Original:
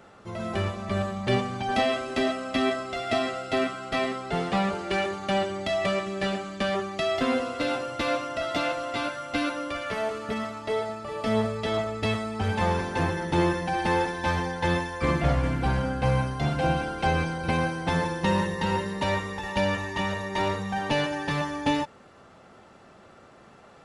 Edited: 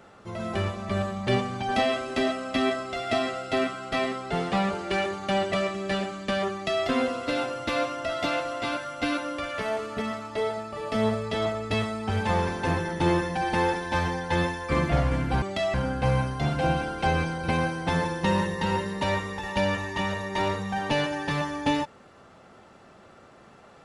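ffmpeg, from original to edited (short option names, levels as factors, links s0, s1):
-filter_complex "[0:a]asplit=4[s0][s1][s2][s3];[s0]atrim=end=5.522[s4];[s1]atrim=start=5.838:end=15.742[s5];[s2]atrim=start=5.518:end=5.842[s6];[s3]atrim=start=15.738[s7];[s4][s5]acrossfade=d=0.004:c1=hsin:c2=hsin[s8];[s8][s6]acrossfade=d=0.004:c1=hsin:c2=hsin[s9];[s9][s7]acrossfade=d=0.004:c1=hsin:c2=hsin"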